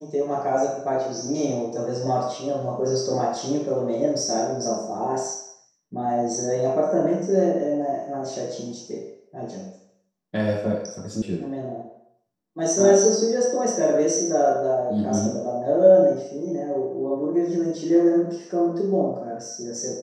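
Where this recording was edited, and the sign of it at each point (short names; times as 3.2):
11.22 sound cut off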